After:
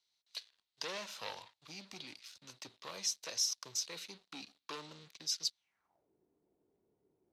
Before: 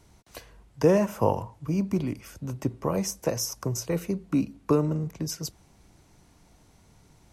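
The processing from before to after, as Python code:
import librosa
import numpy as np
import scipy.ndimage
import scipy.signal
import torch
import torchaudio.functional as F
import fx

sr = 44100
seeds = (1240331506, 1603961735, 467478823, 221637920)

y = fx.leveller(x, sr, passes=3)
y = fx.filter_sweep_bandpass(y, sr, from_hz=4000.0, to_hz=390.0, start_s=5.56, end_s=6.1, q=4.0)
y = y * 10.0 ** (-1.5 / 20.0)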